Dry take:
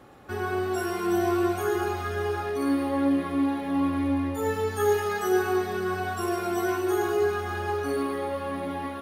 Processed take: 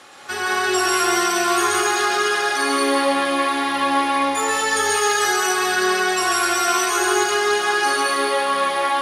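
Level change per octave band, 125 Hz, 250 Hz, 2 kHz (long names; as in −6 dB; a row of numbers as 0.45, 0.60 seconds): below −10 dB, 0.0 dB, +14.5 dB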